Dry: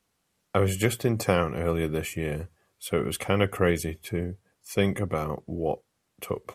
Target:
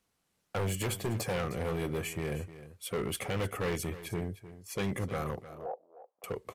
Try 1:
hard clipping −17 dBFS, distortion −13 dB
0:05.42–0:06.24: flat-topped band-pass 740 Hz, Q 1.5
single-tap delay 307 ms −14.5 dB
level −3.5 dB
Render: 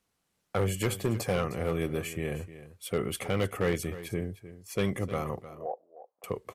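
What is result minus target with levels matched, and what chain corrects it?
hard clipping: distortion −7 dB
hard clipping −25 dBFS, distortion −6 dB
0:05.42–0:06.24: flat-topped band-pass 740 Hz, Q 1.5
single-tap delay 307 ms −14.5 dB
level −3.5 dB

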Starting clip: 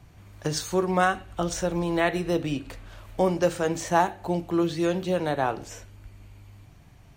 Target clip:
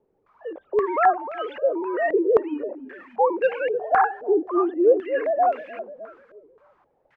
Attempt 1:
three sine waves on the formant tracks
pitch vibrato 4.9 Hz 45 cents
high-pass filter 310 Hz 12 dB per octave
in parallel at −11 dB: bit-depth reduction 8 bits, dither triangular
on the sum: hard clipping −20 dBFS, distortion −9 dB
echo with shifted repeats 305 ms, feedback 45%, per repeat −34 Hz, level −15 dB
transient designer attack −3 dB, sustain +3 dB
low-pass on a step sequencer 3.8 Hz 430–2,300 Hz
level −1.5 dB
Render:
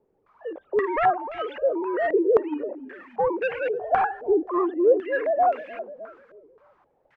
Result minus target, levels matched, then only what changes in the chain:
hard clipping: distortion +11 dB
change: hard clipping −11 dBFS, distortion −20 dB

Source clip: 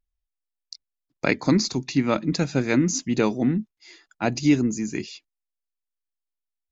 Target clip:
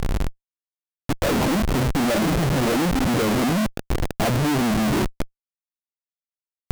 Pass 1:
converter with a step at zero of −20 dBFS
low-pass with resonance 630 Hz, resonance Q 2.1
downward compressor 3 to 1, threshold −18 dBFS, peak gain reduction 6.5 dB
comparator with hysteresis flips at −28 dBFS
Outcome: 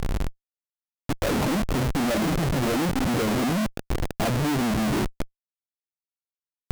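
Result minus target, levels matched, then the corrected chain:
downward compressor: peak gain reduction +6.5 dB
converter with a step at zero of −20 dBFS
low-pass with resonance 630 Hz, resonance Q 2.1
comparator with hysteresis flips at −28 dBFS

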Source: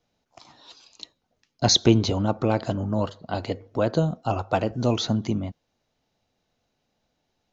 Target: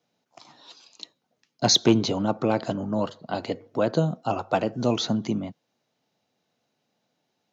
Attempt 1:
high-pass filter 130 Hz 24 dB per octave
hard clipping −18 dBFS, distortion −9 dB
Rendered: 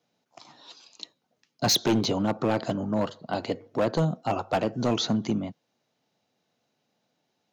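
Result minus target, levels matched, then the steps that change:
hard clipping: distortion +16 dB
change: hard clipping −9 dBFS, distortion −25 dB

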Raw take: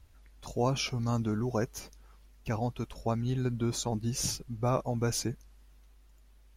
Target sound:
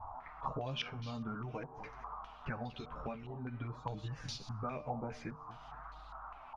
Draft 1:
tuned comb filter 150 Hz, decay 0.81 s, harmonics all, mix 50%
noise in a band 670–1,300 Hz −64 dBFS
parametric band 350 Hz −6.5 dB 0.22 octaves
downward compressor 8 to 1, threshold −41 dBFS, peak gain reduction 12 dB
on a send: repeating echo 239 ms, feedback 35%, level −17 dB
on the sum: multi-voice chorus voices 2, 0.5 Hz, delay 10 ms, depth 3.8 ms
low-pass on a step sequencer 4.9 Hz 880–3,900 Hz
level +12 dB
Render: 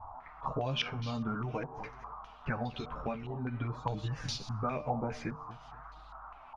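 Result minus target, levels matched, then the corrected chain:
downward compressor: peak gain reduction −6 dB
tuned comb filter 150 Hz, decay 0.81 s, harmonics all, mix 50%
noise in a band 670–1,300 Hz −64 dBFS
parametric band 350 Hz −6.5 dB 0.22 octaves
downward compressor 8 to 1, threshold −48 dBFS, peak gain reduction 18.5 dB
on a send: repeating echo 239 ms, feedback 35%, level −17 dB
on the sum: multi-voice chorus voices 2, 0.5 Hz, delay 10 ms, depth 3.8 ms
low-pass on a step sequencer 4.9 Hz 880–3,900 Hz
level +12 dB

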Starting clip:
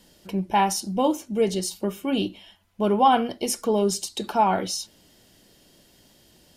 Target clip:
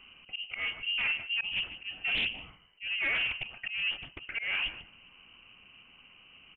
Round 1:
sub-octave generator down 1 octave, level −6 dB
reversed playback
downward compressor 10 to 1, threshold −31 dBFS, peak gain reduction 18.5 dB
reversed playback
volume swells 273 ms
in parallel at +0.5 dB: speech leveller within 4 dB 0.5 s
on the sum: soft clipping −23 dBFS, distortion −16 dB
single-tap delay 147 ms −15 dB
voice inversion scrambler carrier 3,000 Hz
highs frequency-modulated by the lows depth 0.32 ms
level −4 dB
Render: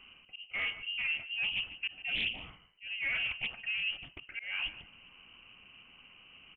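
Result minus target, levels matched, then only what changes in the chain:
downward compressor: peak gain reduction +9 dB
change: downward compressor 10 to 1, threshold −21 dBFS, peak gain reduction 9.5 dB

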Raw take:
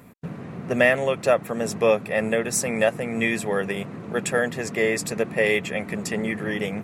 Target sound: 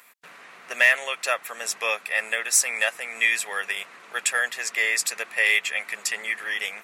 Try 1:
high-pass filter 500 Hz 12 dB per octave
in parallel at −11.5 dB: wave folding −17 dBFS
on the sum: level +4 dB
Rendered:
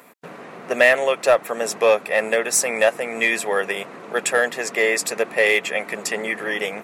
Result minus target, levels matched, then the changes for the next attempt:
500 Hz band +12.5 dB
change: high-pass filter 1,600 Hz 12 dB per octave

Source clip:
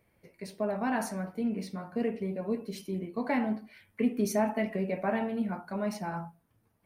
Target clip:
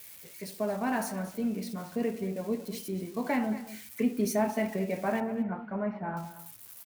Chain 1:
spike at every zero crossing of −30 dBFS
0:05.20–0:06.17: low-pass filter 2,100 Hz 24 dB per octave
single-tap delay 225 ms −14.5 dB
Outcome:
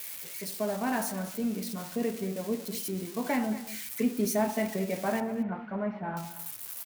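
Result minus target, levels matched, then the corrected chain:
spike at every zero crossing: distortion +8 dB
spike at every zero crossing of −38.5 dBFS
0:05.20–0:06.17: low-pass filter 2,100 Hz 24 dB per octave
single-tap delay 225 ms −14.5 dB

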